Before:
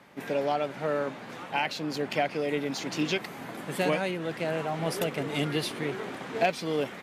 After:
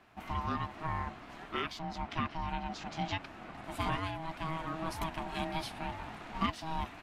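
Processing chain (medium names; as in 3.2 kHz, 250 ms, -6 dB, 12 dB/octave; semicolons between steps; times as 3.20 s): treble shelf 5.3 kHz -5 dB; ring modulator 480 Hz; 1.79–3.64 s: distance through air 60 m; trim -4 dB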